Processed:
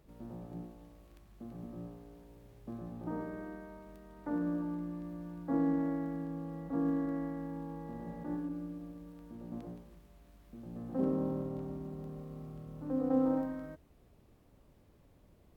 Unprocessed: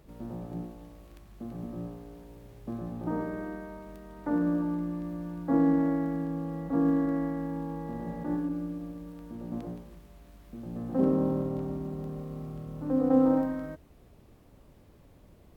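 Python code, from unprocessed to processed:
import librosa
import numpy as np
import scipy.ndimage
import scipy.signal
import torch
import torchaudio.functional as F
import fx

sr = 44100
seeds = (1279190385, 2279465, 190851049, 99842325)

y = F.gain(torch.from_numpy(x), -7.0).numpy()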